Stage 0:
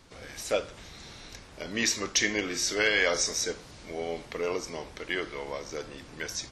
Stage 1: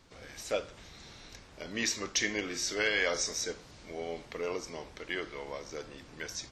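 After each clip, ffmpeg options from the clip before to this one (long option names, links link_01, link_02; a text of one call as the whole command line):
ffmpeg -i in.wav -af "equalizer=frequency=10000:width=3.8:gain=-8.5,volume=-4.5dB" out.wav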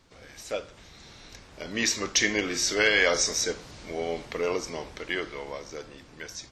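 ffmpeg -i in.wav -af "dynaudnorm=framelen=290:gausssize=11:maxgain=7.5dB" out.wav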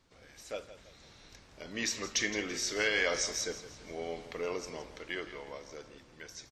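ffmpeg -i in.wav -af "aecho=1:1:167|334|501|668:0.211|0.0845|0.0338|0.0135,volume=-8dB" out.wav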